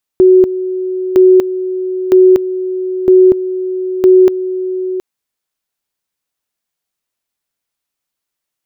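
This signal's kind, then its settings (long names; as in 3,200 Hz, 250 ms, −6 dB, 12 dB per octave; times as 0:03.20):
tone at two levels in turn 371 Hz −2.5 dBFS, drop 12.5 dB, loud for 0.24 s, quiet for 0.72 s, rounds 5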